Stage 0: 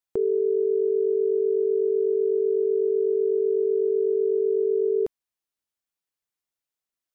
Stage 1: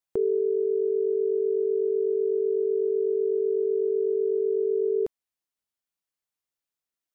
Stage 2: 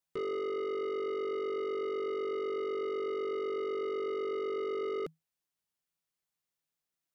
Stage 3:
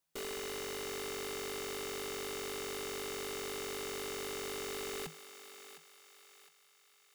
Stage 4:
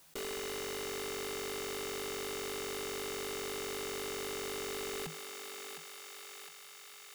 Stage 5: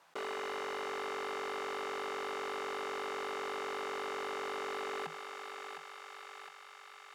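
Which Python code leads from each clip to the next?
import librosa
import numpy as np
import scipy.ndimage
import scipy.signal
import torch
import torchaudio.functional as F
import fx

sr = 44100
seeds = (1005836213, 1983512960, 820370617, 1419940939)

y1 = fx.rider(x, sr, range_db=10, speed_s=0.5)
y1 = F.gain(torch.from_numpy(y1), -2.0).numpy()
y2 = fx.peak_eq(y1, sr, hz=160.0, db=11.5, octaves=0.2)
y2 = 10.0 ** (-33.0 / 20.0) * np.tanh(y2 / 10.0 ** (-33.0 / 20.0))
y3 = (np.mod(10.0 ** (43.0 / 20.0) * y2 + 1.0, 2.0) - 1.0) / 10.0 ** (43.0 / 20.0)
y3 = fx.echo_thinned(y3, sr, ms=710, feedback_pct=48, hz=650.0, wet_db=-10.5)
y3 = F.gain(torch.from_numpy(y3), 4.5).numpy()
y4 = fx.env_flatten(y3, sr, amount_pct=50)
y4 = F.gain(torch.from_numpy(y4), 1.0).numpy()
y5 = fx.bandpass_q(y4, sr, hz=1000.0, q=1.2)
y5 = F.gain(torch.from_numpy(y5), 8.0).numpy()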